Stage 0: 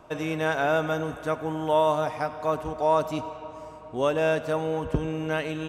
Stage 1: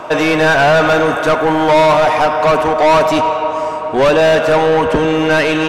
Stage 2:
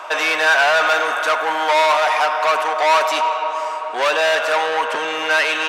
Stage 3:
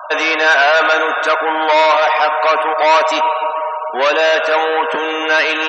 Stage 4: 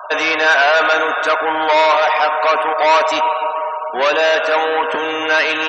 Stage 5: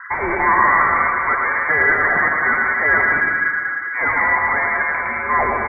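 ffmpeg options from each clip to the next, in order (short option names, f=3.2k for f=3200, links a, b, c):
-filter_complex "[0:a]asplit=2[a][b];[b]highpass=f=720:p=1,volume=26dB,asoftclip=type=tanh:threshold=-10dB[c];[a][c]amix=inputs=2:normalize=0,lowpass=f=3k:p=1,volume=-6dB,volume=7dB"
-af "highpass=950"
-af "bandreject=f=850:w=25,afftfilt=real='re*gte(hypot(re,im),0.0355)':imag='im*gte(hypot(re,im),0.0355)':win_size=1024:overlap=0.75,lowshelf=f=310:g=10.5,volume=2.5dB"
-af "tremolo=f=190:d=0.261"
-af "lowpass=f=2.2k:t=q:w=0.5098,lowpass=f=2.2k:t=q:w=0.6013,lowpass=f=2.2k:t=q:w=0.9,lowpass=f=2.2k:t=q:w=2.563,afreqshift=-2600,highshelf=f=2k:g=-10.5,aecho=1:1:110|192.5|254.4|300.8|335.6:0.631|0.398|0.251|0.158|0.1"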